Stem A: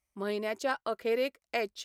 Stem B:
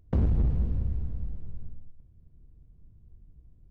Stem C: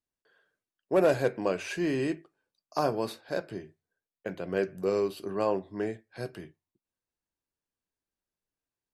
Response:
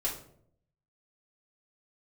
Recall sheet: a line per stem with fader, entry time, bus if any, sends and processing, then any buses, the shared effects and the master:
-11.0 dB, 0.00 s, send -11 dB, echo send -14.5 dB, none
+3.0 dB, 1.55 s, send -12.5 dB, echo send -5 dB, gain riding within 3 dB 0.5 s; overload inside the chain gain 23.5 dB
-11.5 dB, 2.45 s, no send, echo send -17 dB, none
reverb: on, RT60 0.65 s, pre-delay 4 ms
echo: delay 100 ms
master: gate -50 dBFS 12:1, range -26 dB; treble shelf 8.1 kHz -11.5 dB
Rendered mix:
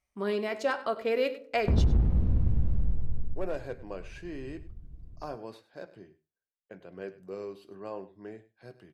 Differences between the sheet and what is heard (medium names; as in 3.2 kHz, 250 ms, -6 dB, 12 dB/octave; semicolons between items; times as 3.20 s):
stem A -11.0 dB -> 0.0 dB; stem B: send off; master: missing gate -50 dBFS 12:1, range -26 dB